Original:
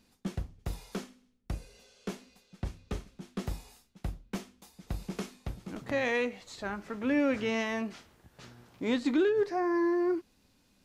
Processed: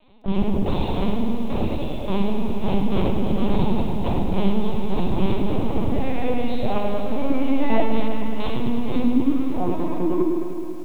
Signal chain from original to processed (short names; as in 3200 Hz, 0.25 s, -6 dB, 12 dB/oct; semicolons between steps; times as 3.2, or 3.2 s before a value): HPF 210 Hz 12 dB/oct; spectral gate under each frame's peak -30 dB strong; high shelf 3100 Hz -5.5 dB; reverse; compressor 16:1, threshold -38 dBFS, peak gain reduction 15.5 dB; reverse; sample leveller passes 3; vocal rider within 5 dB 0.5 s; fixed phaser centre 420 Hz, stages 6; on a send: repeats that get brighter 0.1 s, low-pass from 400 Hz, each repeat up 1 oct, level -3 dB; on the sum: shoebox room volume 220 m³, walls mixed, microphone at 5.9 m; LPC vocoder at 8 kHz pitch kept; lo-fi delay 0.106 s, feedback 80%, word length 8-bit, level -10 dB